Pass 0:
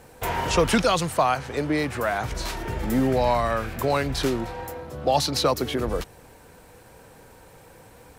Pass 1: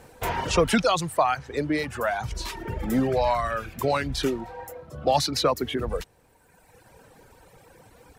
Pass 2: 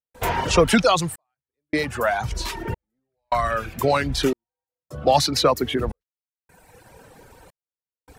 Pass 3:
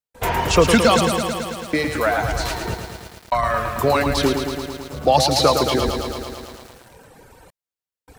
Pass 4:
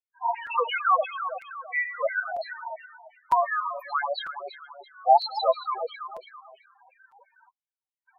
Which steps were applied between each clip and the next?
reverb removal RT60 1.6 s; treble shelf 11 kHz -4 dB
trance gate ".xxxxxxx..." 104 bpm -60 dB; trim +4.5 dB
bit-crushed delay 110 ms, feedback 80%, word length 7-bit, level -6.5 dB; trim +1.5 dB
LFO high-pass saw down 2.9 Hz 600–2500 Hz; loudest bins only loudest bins 4; crackling interface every 0.95 s, samples 256, repeat, from 0.46 s; trim -4.5 dB

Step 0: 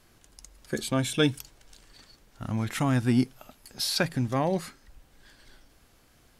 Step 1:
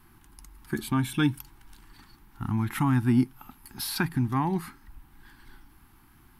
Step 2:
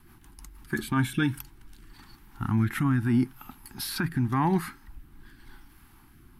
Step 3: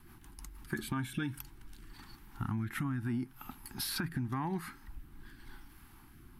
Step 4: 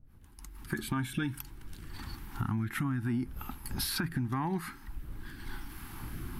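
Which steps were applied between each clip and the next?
FFT filter 350 Hz 0 dB, 560 Hz -29 dB, 850 Hz +3 dB, 7 kHz -14 dB, 12 kHz +1 dB; in parallel at -2.5 dB: compression, threshold -35 dBFS, peak gain reduction 16 dB
dynamic bell 1.6 kHz, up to +7 dB, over -48 dBFS, Q 1.7; peak limiter -18.5 dBFS, peak gain reduction 7.5 dB; rotary cabinet horn 6.3 Hz, later 0.85 Hz, at 0.57 s; trim +4 dB
compression 6:1, threshold -31 dBFS, peak gain reduction 11.5 dB; trim -1.5 dB
fade-in on the opening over 0.91 s; wind noise 81 Hz -54 dBFS; recorder AGC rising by 7 dB/s; trim +3 dB

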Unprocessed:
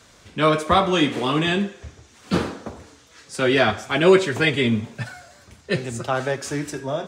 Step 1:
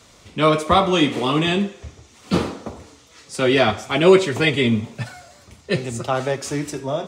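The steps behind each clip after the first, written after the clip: peaking EQ 1.6 kHz -9.5 dB 0.21 oct; trim +2 dB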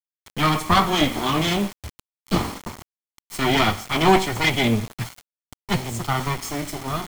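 comb filter that takes the minimum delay 0.92 ms; bit crusher 6-bit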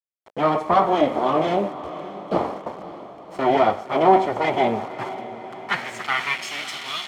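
waveshaping leveller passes 2; band-pass sweep 590 Hz -> 3.2 kHz, 4.37–6.74 s; echo that smears into a reverb 552 ms, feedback 56%, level -14 dB; trim +3.5 dB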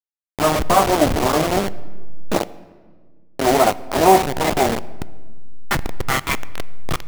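send-on-delta sampling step -17 dBFS; on a send at -18 dB: reverberation RT60 1.5 s, pre-delay 13 ms; on the sum: trim +3.5 dB

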